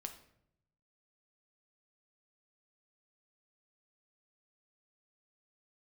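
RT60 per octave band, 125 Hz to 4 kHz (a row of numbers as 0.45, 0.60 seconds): 1.3, 1.0, 0.80, 0.65, 0.60, 0.50 seconds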